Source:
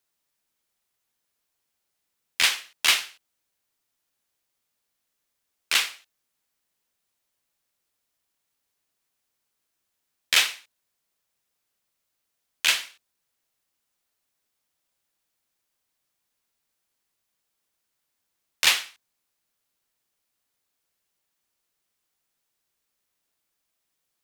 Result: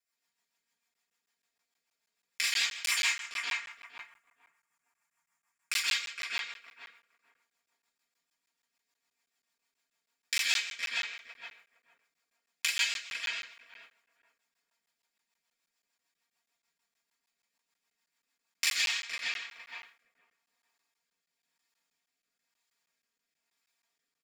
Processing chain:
0:02.91–0:05.72: octave-band graphic EQ 125/250/500/1,000/2,000/4,000/8,000 Hz +8/−5/−10/+10/+4/−11/+6 dB
feedback echo with a low-pass in the loop 463 ms, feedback 23%, low-pass 1,400 Hz, level −5.5 dB
convolution reverb RT60 0.50 s, pre-delay 121 ms, DRR −5.5 dB
rotating-speaker cabinet horn 6.7 Hz, later 1 Hz, at 0:18.28
downward compressor 2.5 to 1, threshold −34 dBFS, peak gain reduction 13.5 dB
tilt shelving filter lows −7 dB, about 630 Hz
mains-hum notches 50/100/150/200 Hz
comb filter 4.3 ms, depth 91%
regular buffer underruns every 0.16 s, samples 512, zero, from 0:00.94
one half of a high-frequency compander decoder only
level −7 dB

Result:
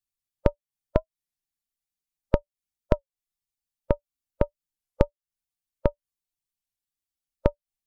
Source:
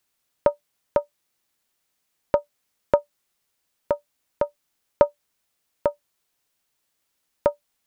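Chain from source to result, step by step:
spectral dynamics exaggerated over time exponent 1.5
downward compressor 10 to 1, threshold −32 dBFS, peak gain reduction 20.5 dB
spectral tilt −4 dB per octave
wow of a warped record 33 1/3 rpm, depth 160 cents
level +7.5 dB

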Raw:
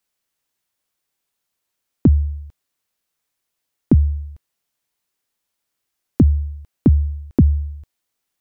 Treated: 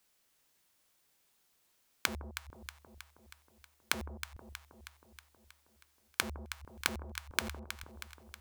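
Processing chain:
wrap-around overflow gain 11 dB
gate with flip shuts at −27 dBFS, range −31 dB
delay that swaps between a low-pass and a high-pass 159 ms, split 900 Hz, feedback 77%, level −8 dB
level +4.5 dB

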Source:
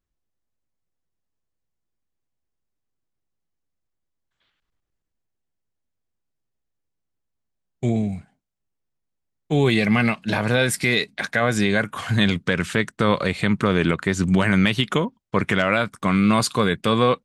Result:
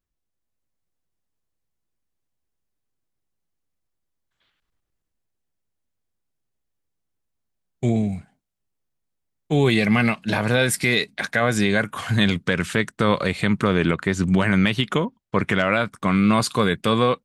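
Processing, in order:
parametric band 11,000 Hz +2.5 dB 0.69 octaves
automatic gain control gain up to 3 dB
0:13.70–0:16.47: high-shelf EQ 5,800 Hz −5.5 dB
level −2 dB

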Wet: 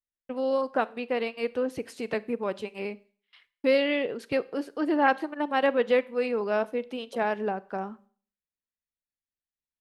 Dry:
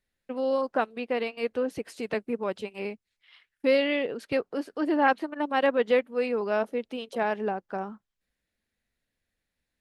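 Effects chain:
noise gate with hold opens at −46 dBFS
four-comb reverb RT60 0.45 s, combs from 31 ms, DRR 19 dB

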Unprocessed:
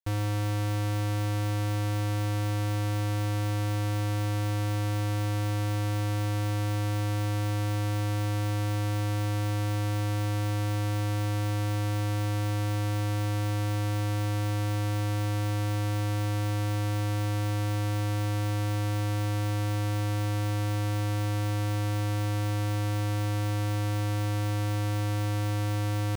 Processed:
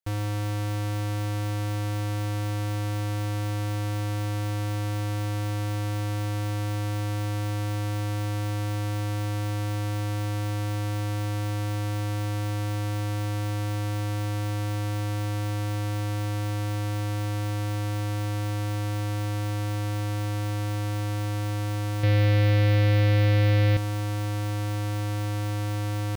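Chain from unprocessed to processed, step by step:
0:22.03–0:23.77: octave-band graphic EQ 125/500/1,000/2,000/4,000/8,000 Hz +11/+11/−6/+11/+7/−9 dB

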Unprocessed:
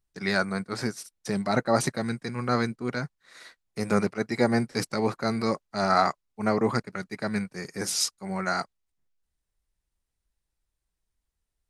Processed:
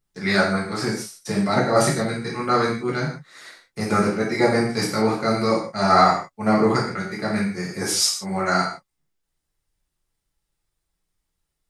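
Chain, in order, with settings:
reverb whose tail is shaped and stops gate 190 ms falling, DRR −5.5 dB

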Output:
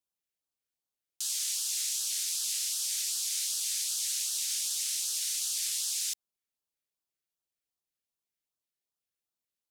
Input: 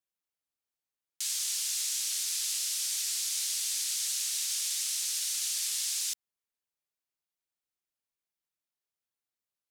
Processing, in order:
auto-filter notch sine 2.6 Hz 870–2,200 Hz

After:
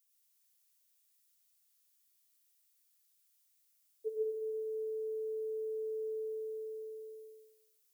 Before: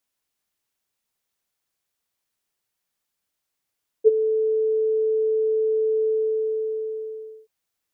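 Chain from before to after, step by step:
first difference
convolution reverb RT60 1.3 s, pre-delay 55 ms, DRR −2 dB
level +2 dB

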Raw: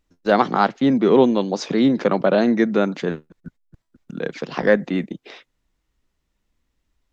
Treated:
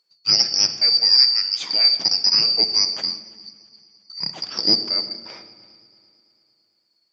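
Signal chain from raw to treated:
band-splitting scrambler in four parts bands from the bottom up 2341
high-pass filter 190 Hz 12 dB per octave
echo machine with several playback heads 112 ms, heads first and third, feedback 59%, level −23 dB
rectangular room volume 1,300 cubic metres, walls mixed, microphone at 0.63 metres
0:03.07–0:04.21: string-ensemble chorus
level −1 dB

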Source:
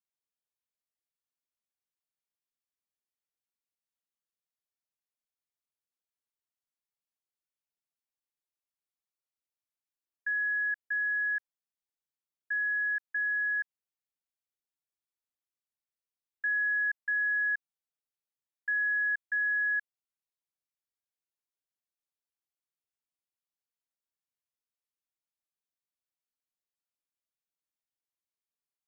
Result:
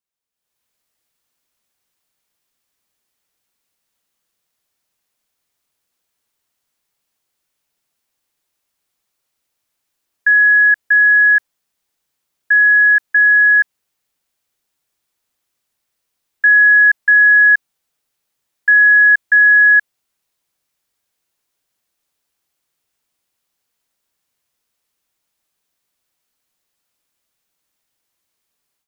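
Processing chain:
automatic gain control gain up to 15.5 dB
level +4.5 dB

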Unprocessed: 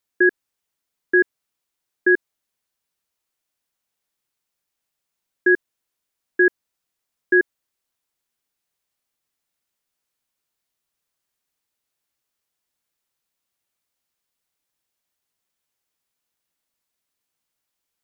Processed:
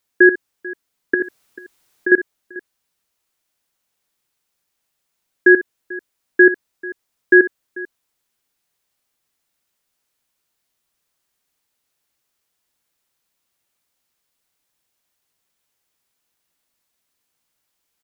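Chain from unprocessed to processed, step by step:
0:01.14–0:02.12: compressor whose output falls as the input rises −25 dBFS, ratio −1
multi-tap delay 63/441 ms −14/−20 dB
level +6 dB

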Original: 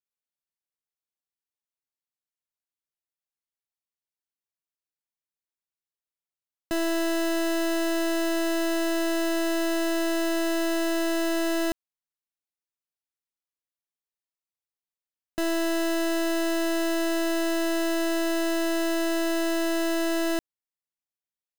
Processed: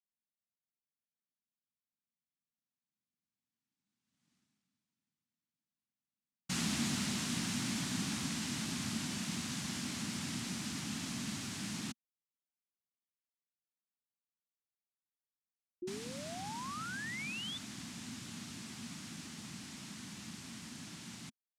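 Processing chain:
source passing by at 0:04.32, 28 m/s, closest 3.6 metres
in parallel at +1 dB: brickwall limiter −57.5 dBFS, peak gain reduction 10.5 dB
on the sum: cochlear-implant simulation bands 1
sound drawn into the spectrogram rise, 0:15.82–0:17.58, 350–3,600 Hz −52 dBFS
low shelf with overshoot 330 Hz +12.5 dB, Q 3
level +9.5 dB

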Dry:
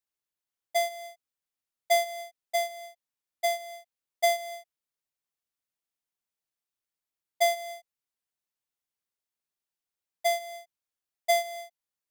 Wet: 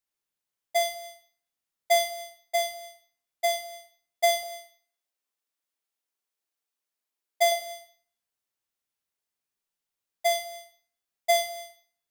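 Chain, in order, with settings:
0:04.43–0:07.52: high-pass filter 250 Hz 24 dB per octave
four-comb reverb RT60 0.49 s, combs from 28 ms, DRR 5 dB
level +1.5 dB

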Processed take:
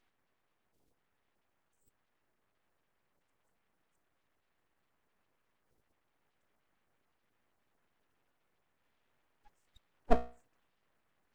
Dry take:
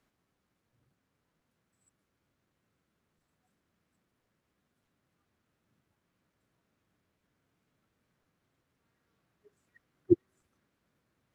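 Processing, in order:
spectral magnitudes quantised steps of 30 dB
mains-hum notches 60/120/180/240/300/360 Hz
full-wave rectification
level +2 dB

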